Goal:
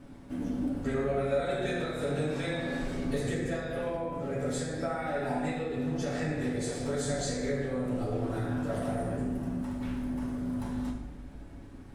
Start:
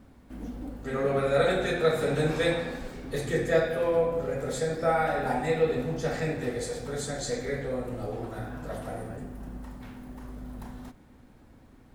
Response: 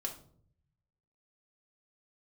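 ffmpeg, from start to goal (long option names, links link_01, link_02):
-filter_complex "[0:a]acompressor=threshold=-34dB:ratio=6[link_01];[1:a]atrim=start_sample=2205,asetrate=22491,aresample=44100[link_02];[link_01][link_02]afir=irnorm=-1:irlink=0"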